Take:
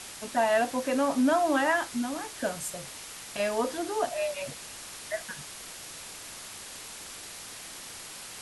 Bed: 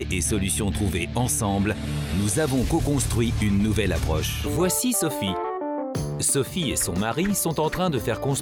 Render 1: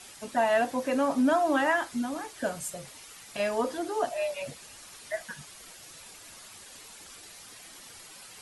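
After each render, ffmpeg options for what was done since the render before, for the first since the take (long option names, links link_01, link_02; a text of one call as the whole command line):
ffmpeg -i in.wav -af "afftdn=noise_reduction=9:noise_floor=-44" out.wav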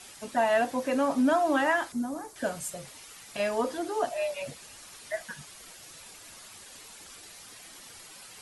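ffmpeg -i in.wav -filter_complex "[0:a]asettb=1/sr,asplit=3[link_01][link_02][link_03];[link_01]atrim=end=1.924[link_04];[link_02]atrim=start=1.92:end=2.36,asetpts=PTS-STARTPTS,afade=type=in:duration=0.004:curve=qsin,afade=type=out:start_time=0.436:duration=0.004:curve=qsin,equalizer=frequency=2800:width=0.86:gain=-14.5[link_05];[link_03]atrim=start=2.356[link_06];[link_04][link_05]acrossfade=duration=0.004:curve1=hsin:curve2=qsin[link_07];[link_07][link_06]acrossfade=duration=0.004:curve1=qsin:curve2=hsin" out.wav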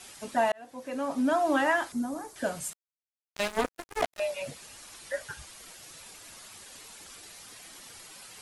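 ffmpeg -i in.wav -filter_complex "[0:a]asettb=1/sr,asplit=3[link_01][link_02][link_03];[link_01]atrim=end=2.734[link_04];[link_02]atrim=start=2.73:end=4.2,asetpts=PTS-STARTPTS,afade=type=in:duration=0.004:curve=qsin,afade=type=out:start_time=1.466:duration=0.004:curve=qsin,acrusher=bits=3:mix=0:aa=0.5[link_05];[link_03]atrim=start=4.196[link_06];[link_04][link_05]acrossfade=duration=0.004:curve1=hsin:curve2=qsin[link_07];[link_07][link_06]acrossfade=duration=0.004:curve1=qsin:curve2=hsin,asettb=1/sr,asplit=3[link_08][link_09][link_10];[link_08]atrim=end=4.874[link_11];[link_09]atrim=start=4.87:end=5.53,asetpts=PTS-STARTPTS,afade=type=in:duration=0.004:curve=qsin,afade=type=out:start_time=0.656:duration=0.004:curve=qsin,afreqshift=-80[link_12];[link_10]atrim=start=5.526[link_13];[link_11][link_12]acrossfade=duration=0.004:curve1=hsin:curve2=qsin[link_14];[link_14][link_13]acrossfade=duration=0.004:curve1=qsin:curve2=hsin,asplit=2[link_15][link_16];[link_15]atrim=end=0.52,asetpts=PTS-STARTPTS,afade=type=out:start_time=0.516:duration=0.004:curve=hsin[link_17];[link_16]atrim=start=0.52,asetpts=PTS-STARTPTS,afade=type=in:duration=0.99[link_18];[link_17][link_18]concat=n=2:v=0:a=1" out.wav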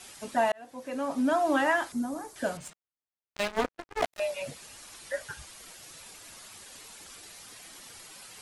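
ffmpeg -i in.wav -filter_complex "[0:a]asettb=1/sr,asplit=3[link_01][link_02][link_03];[link_01]atrim=end=2.574[link_04];[link_02]atrim=start=2.57:end=4.02,asetpts=PTS-STARTPTS,afade=type=in:duration=0.004:curve=qsin,afade=type=out:start_time=1.446:duration=0.004:curve=qsin,adynamicsmooth=sensitivity=7:basefreq=3100[link_05];[link_03]atrim=start=4.016[link_06];[link_04][link_05]acrossfade=duration=0.004:curve1=hsin:curve2=qsin[link_07];[link_07][link_06]acrossfade=duration=0.004:curve1=qsin:curve2=hsin" out.wav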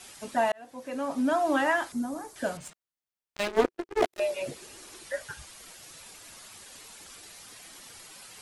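ffmpeg -i in.wav -filter_complex "[0:a]asettb=1/sr,asplit=3[link_01][link_02][link_03];[link_01]atrim=end=3.474[link_04];[link_02]atrim=start=3.47:end=5.03,asetpts=PTS-STARTPTS,afade=type=in:duration=0.004:curve=qsin,afade=type=out:start_time=1.556:duration=0.004:curve=qsin,equalizer=frequency=370:width_type=o:width=0.6:gain=14.5[link_05];[link_03]atrim=start=5.026[link_06];[link_04][link_05]acrossfade=duration=0.004:curve1=hsin:curve2=qsin[link_07];[link_07][link_06]acrossfade=duration=0.004:curve1=qsin:curve2=hsin" out.wav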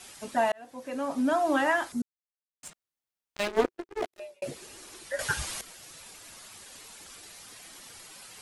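ffmpeg -i in.wav -filter_complex "[0:a]asplit=6[link_01][link_02][link_03][link_04][link_05][link_06];[link_01]atrim=end=2.02,asetpts=PTS-STARTPTS,afade=type=out:start_time=2.016:duration=0.004:curve=hsin[link_07];[link_02]atrim=start=2.02:end=2.63,asetpts=PTS-STARTPTS,volume=0[link_08];[link_03]atrim=start=2.63:end=4.42,asetpts=PTS-STARTPTS,afade=type=in:duration=0.004:curve=hsin,afade=type=out:start_time=0.84:duration=0.95[link_09];[link_04]atrim=start=4.42:end=5.192,asetpts=PTS-STARTPTS,afade=type=in:duration=0.004:curve=hsin[link_10];[link_05]atrim=start=5.188:end=5.612,asetpts=PTS-STARTPTS,volume=12dB[link_11];[link_06]atrim=start=5.608[link_12];[link_07][link_08][link_09][link_10]concat=n=4:v=0:a=1[link_13];[link_13][link_11]acrossfade=duration=0.004:curve1=hsin:curve2=hsin[link_14];[link_14][link_12]acrossfade=duration=0.004:curve1=hsin:curve2=hsin" out.wav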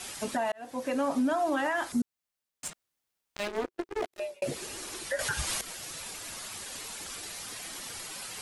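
ffmpeg -i in.wav -filter_complex "[0:a]asplit=2[link_01][link_02];[link_02]acompressor=threshold=-35dB:ratio=6,volume=2.5dB[link_03];[link_01][link_03]amix=inputs=2:normalize=0,alimiter=limit=-21dB:level=0:latency=1:release=130" out.wav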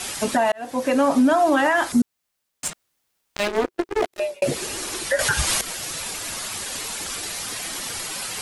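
ffmpeg -i in.wav -af "volume=10.5dB" out.wav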